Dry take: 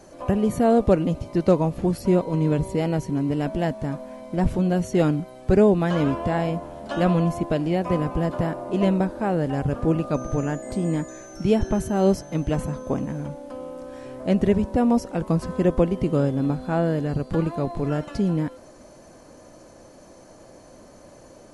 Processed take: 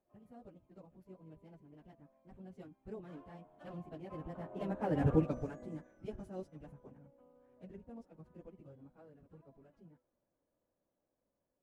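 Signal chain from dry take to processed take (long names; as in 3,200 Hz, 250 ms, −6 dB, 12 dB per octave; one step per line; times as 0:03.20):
adaptive Wiener filter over 9 samples
source passing by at 0:09.37, 11 m/s, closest 2.6 metres
time stretch by phase vocoder 0.54×
level −2 dB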